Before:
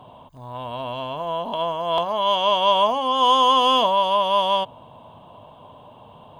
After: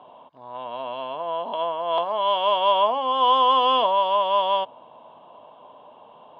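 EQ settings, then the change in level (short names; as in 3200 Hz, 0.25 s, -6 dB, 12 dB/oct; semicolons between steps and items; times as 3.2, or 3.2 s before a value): HPF 360 Hz 12 dB/oct; LPF 5300 Hz 24 dB/oct; air absorption 230 m; 0.0 dB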